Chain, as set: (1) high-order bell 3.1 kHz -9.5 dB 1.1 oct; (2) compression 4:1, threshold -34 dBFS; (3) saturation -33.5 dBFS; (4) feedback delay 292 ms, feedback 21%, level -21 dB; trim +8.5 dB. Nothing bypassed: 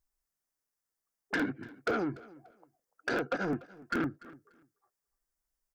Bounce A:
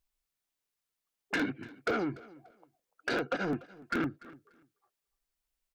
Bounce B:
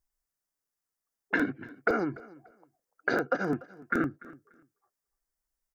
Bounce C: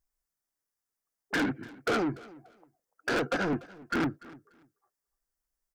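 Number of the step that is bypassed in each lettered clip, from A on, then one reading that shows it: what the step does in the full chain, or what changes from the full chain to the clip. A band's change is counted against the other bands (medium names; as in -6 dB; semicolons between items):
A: 1, 4 kHz band +3.5 dB; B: 3, distortion -11 dB; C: 2, mean gain reduction 6.5 dB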